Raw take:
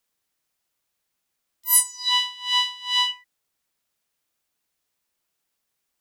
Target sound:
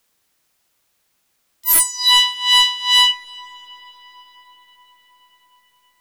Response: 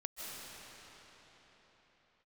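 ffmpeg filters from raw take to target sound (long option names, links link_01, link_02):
-filter_complex "[0:a]aeval=exprs='0.631*sin(PI/2*3.98*val(0)/0.631)':channel_layout=same,asplit=2[link_01][link_02];[1:a]atrim=start_sample=2205,asetrate=25578,aresample=44100,lowpass=7700[link_03];[link_02][link_03]afir=irnorm=-1:irlink=0,volume=-22.5dB[link_04];[link_01][link_04]amix=inputs=2:normalize=0,volume=-4.5dB"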